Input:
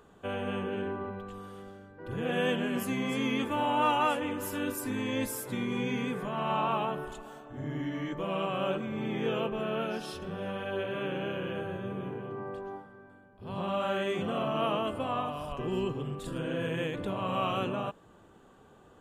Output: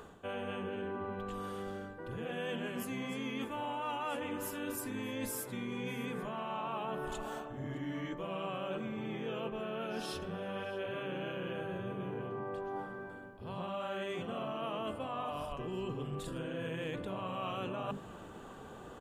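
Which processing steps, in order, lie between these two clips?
hum notches 50/100/150/200/250/300/350/400 Hz; reverse; compression 6:1, threshold -46 dBFS, peak gain reduction 21 dB; reverse; delay 613 ms -22 dB; trim +8.5 dB

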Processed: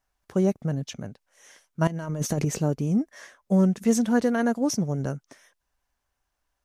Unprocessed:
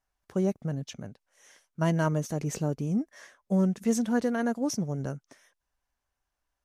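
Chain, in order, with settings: 1.87–2.45 s: compressor with a negative ratio -31 dBFS, ratio -0.5; trim +4.5 dB

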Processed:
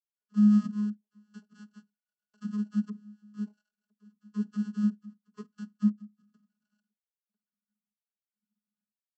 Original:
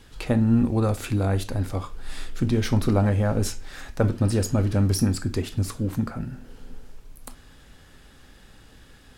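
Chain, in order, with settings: expander on every frequency bin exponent 2; inverse Chebyshev band-stop 570–3800 Hz, stop band 50 dB; dynamic bell 210 Hz, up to -5 dB, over -39 dBFS, Q 0.96; low-pass sweep 2.2 kHz -> 250 Hz, 3.22–5.71 s; in parallel at 0 dB: peak limiter -27 dBFS, peak gain reduction 9.5 dB; on the sum: trance gate "...xxxxx." 135 bpm -24 dB; sample-rate reducer 1.5 kHz, jitter 0%; vocoder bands 32, saw 209 Hz; high-order bell 2.3 kHz -9 dB

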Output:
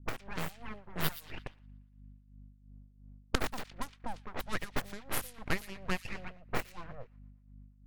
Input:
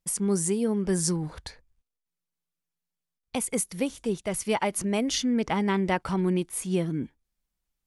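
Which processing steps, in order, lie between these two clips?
local Wiener filter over 15 samples; recorder AGC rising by 18 dB/s; resonant high shelf 1.8 kHz -8.5 dB, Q 3; harmonic-percussive split harmonic -16 dB; tilt EQ +4 dB/octave; in parallel at +3 dB: compression 6:1, threshold -36 dBFS, peak gain reduction 20 dB; on the sum: full-wave rectifier; hum 50 Hz, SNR 17 dB; tremolo 2.9 Hz, depth 74%; on a send: feedback echo behind a high-pass 117 ms, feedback 77%, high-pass 3.5 kHz, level -10.5 dB; on the sum: level-controlled noise filter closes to 350 Hz, open at -27 dBFS; trim -3 dB

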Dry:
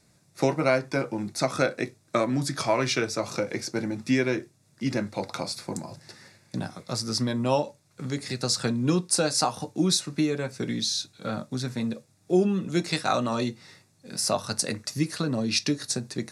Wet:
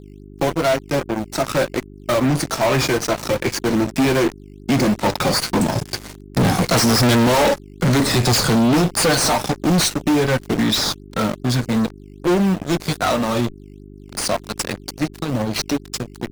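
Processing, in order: drifting ripple filter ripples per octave 1.9, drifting -1.6 Hz, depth 9 dB; Doppler pass-by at 7.06 s, 9 m/s, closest 2.7 m; fuzz box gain 52 dB, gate -57 dBFS; reverse; upward compressor, threshold -29 dBFS; reverse; mains buzz 50 Hz, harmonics 8, -40 dBFS -2 dB/octave; in parallel at -4.5 dB: decimation with a swept rate 10×, swing 160% 2.5 Hz; on the sum: trim -4 dB

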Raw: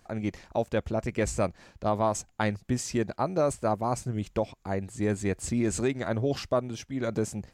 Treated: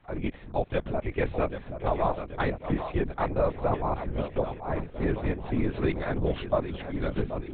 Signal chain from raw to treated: on a send: two-band feedback delay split 360 Hz, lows 312 ms, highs 785 ms, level -9.5 dB; on the sum: LPC vocoder at 8 kHz whisper

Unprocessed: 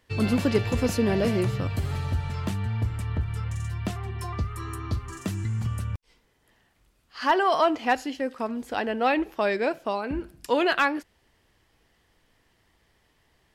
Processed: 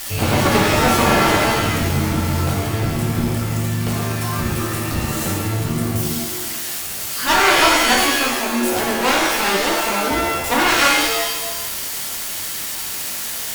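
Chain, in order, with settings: zero-crossing glitches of -22.5 dBFS; Chebyshev shaper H 6 -14 dB, 7 -8 dB, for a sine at -9.5 dBFS; pitch-shifted reverb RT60 1 s, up +7 st, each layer -2 dB, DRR -2.5 dB

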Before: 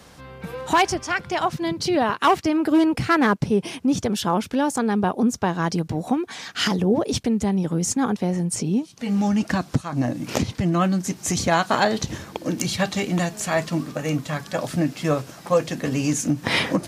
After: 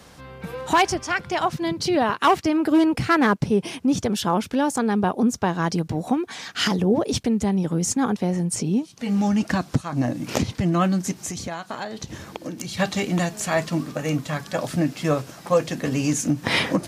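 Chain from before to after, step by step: 11.11–12.77 s: compression 6:1, threshold -29 dBFS, peak gain reduction 14 dB

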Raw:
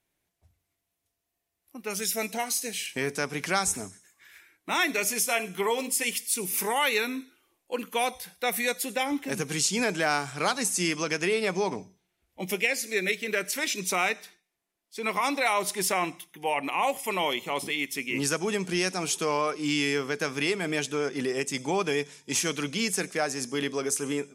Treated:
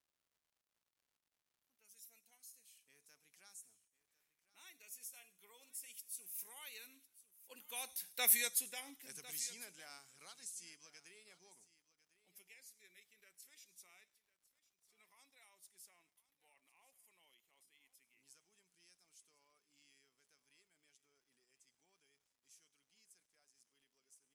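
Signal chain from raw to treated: Doppler pass-by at 8.27 s, 10 m/s, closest 1.7 m; pre-emphasis filter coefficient 0.9; crackle 240 per s -72 dBFS; delay 1052 ms -18 dB; trim +1.5 dB

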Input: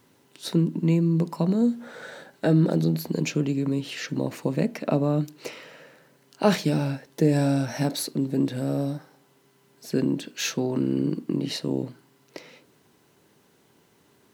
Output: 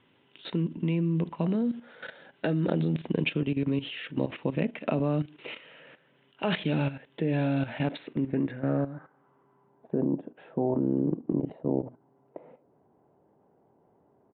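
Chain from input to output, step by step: low-pass sweep 3.1 kHz -> 740 Hz, 7.77–10.05 s; resampled via 8 kHz; level held to a coarse grid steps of 13 dB

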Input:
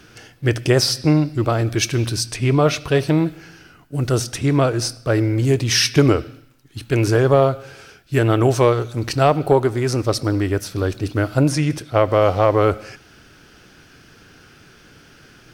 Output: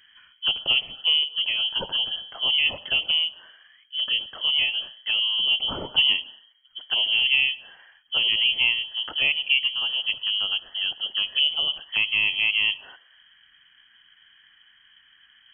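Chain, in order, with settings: touch-sensitive phaser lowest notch 440 Hz, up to 1.6 kHz, full sweep at -13.5 dBFS; frequency inversion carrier 3.2 kHz; trim -6 dB

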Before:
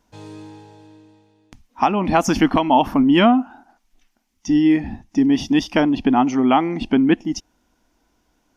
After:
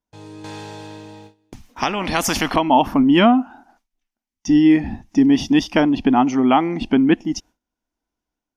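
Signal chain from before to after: gate with hold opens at -44 dBFS; level rider gain up to 4.5 dB; 0.44–2.56 s: spectrum-flattening compressor 2:1; trim -1.5 dB

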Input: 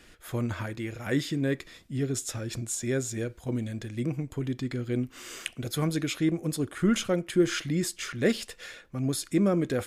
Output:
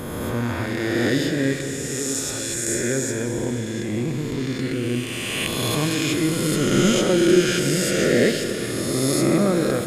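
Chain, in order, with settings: reverse spectral sustain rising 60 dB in 2.59 s; 1.55–2.68 s: bass shelf 440 Hz -7.5 dB; Schroeder reverb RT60 3.9 s, combs from 26 ms, DRR 5.5 dB; trim +2 dB

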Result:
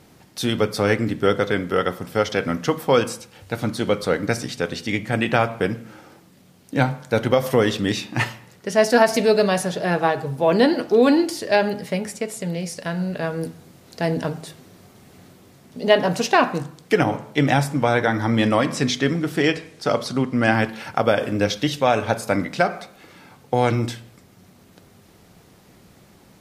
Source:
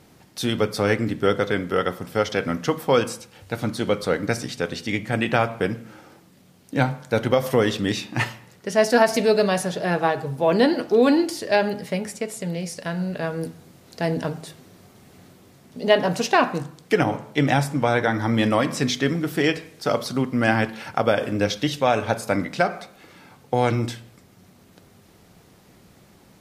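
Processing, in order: 18.24–20.52 s: peaking EQ 14 kHz -6 dB -> -14.5 dB 0.42 oct; trim +1.5 dB

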